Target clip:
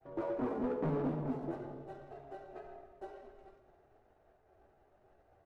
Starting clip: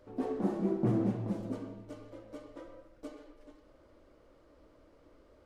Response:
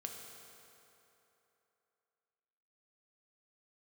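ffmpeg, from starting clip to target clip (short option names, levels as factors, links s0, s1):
-filter_complex "[0:a]lowshelf=f=210:g=-4.5,asplit=4[s0][s1][s2][s3];[s1]adelay=202,afreqshift=-99,volume=0.0891[s4];[s2]adelay=404,afreqshift=-198,volume=0.0427[s5];[s3]adelay=606,afreqshift=-297,volume=0.0204[s6];[s0][s4][s5][s6]amix=inputs=4:normalize=0,asetrate=57191,aresample=44100,atempo=0.771105,asoftclip=type=hard:threshold=0.0282,lowpass=f=1200:p=1,equalizer=f=400:w=4.5:g=-4,agate=range=0.0224:threshold=0.00112:ratio=3:detection=peak,asplit=2[s7][s8];[1:a]atrim=start_sample=2205,afade=t=out:st=0.4:d=0.01,atrim=end_sample=18081,asetrate=38367,aresample=44100[s9];[s8][s9]afir=irnorm=-1:irlink=0,volume=1.12[s10];[s7][s10]amix=inputs=2:normalize=0,volume=0.668"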